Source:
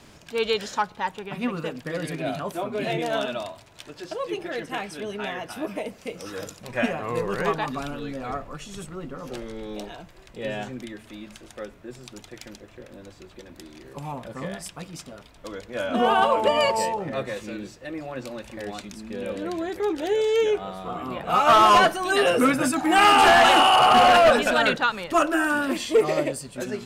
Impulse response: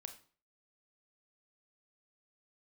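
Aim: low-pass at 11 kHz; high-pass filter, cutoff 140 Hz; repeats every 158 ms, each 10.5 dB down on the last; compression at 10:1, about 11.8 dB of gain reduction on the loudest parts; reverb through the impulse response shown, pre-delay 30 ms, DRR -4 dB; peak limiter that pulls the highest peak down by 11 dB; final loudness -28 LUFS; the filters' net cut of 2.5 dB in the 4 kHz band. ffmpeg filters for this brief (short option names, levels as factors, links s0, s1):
-filter_complex "[0:a]highpass=140,lowpass=11000,equalizer=f=4000:t=o:g=-4,acompressor=threshold=0.0562:ratio=10,alimiter=level_in=1.26:limit=0.0631:level=0:latency=1,volume=0.794,aecho=1:1:158|316|474:0.299|0.0896|0.0269,asplit=2[s0][s1];[1:a]atrim=start_sample=2205,adelay=30[s2];[s1][s2]afir=irnorm=-1:irlink=0,volume=2.82[s3];[s0][s3]amix=inputs=2:normalize=0,volume=1.19"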